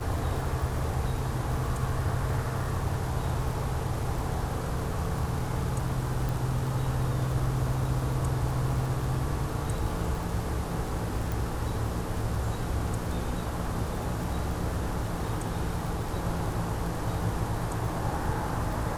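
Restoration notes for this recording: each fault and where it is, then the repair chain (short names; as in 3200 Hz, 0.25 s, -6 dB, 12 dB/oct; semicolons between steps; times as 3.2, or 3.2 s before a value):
crackle 45/s -34 dBFS
6.29 pop
11.32 pop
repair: de-click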